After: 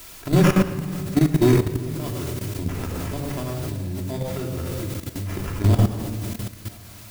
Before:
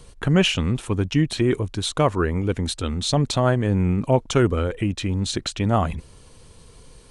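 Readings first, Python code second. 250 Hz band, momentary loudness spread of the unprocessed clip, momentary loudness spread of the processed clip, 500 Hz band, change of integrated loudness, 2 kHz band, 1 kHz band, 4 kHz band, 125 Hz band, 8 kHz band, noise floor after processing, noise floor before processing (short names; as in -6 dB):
0.0 dB, 6 LU, 13 LU, -3.0 dB, -1.5 dB, -4.0 dB, -5.5 dB, -9.5 dB, +0.5 dB, -3.5 dB, -42 dBFS, -48 dBFS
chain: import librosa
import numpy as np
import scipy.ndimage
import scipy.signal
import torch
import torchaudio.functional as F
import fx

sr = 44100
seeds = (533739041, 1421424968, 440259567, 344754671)

y = x + 10.0 ** (-16.5 / 20.0) * np.pad(x, (int(985 * sr / 1000.0), 0))[:len(x)]
y = fx.rider(y, sr, range_db=10, speed_s=2.0)
y = fx.tremolo_random(y, sr, seeds[0], hz=3.5, depth_pct=90)
y = fx.peak_eq(y, sr, hz=6700.0, db=8.0, octaves=0.49)
y = fx.sample_hold(y, sr, seeds[1], rate_hz=4100.0, jitter_pct=0)
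y = fx.cheby_harmonics(y, sr, harmonics=(7,), levels_db=(-20,), full_scale_db=-5.5)
y = fx.low_shelf(y, sr, hz=450.0, db=7.0)
y = fx.dmg_noise_colour(y, sr, seeds[2], colour='white', level_db=-39.0)
y = fx.room_shoebox(y, sr, seeds[3], volume_m3=3000.0, walls='mixed', distance_m=3.0)
y = fx.level_steps(y, sr, step_db=14)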